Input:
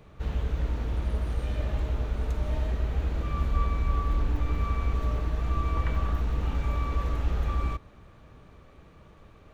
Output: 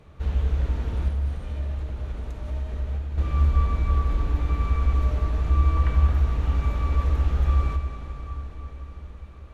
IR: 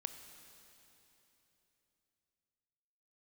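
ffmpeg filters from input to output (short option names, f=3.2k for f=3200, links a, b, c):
-filter_complex "[0:a]equalizer=f=72:w=7.1:g=13,asettb=1/sr,asplit=3[a][b][c];[a]atrim=end=1.084[d];[b]atrim=start=1.08:end=3.18,asetpts=PTS-STARTPTS,afade=t=in:d=0.004:c=qsin,afade=t=out:st=2.096:d=0.004:c=qsin,acompressor=threshold=-27dB:ratio=6[e];[c]atrim=start=3.176[f];[d][e]acrossfade=d=0.004:c1=hsin:c2=qsin[g];[g][f]acrossfade=d=0.004:c1=qsin:c2=hsin[h];[1:a]atrim=start_sample=2205,asetrate=23814,aresample=44100[i];[h][i]afir=irnorm=-1:irlink=0"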